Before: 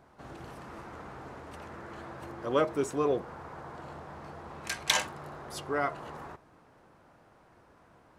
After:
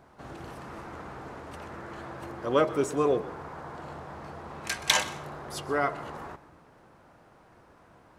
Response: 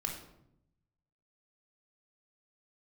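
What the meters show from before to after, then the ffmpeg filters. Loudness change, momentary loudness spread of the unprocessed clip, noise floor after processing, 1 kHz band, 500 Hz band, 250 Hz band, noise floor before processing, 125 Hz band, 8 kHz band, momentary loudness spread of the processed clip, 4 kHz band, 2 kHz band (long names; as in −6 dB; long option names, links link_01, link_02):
+3.0 dB, 17 LU, −58 dBFS, +3.0 dB, +3.0 dB, +3.0 dB, −61 dBFS, +3.0 dB, +3.0 dB, 17 LU, +3.0 dB, +3.0 dB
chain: -filter_complex "[0:a]asplit=2[link_01][link_02];[1:a]atrim=start_sample=2205,adelay=125[link_03];[link_02][link_03]afir=irnorm=-1:irlink=0,volume=-18dB[link_04];[link_01][link_04]amix=inputs=2:normalize=0,volume=3dB"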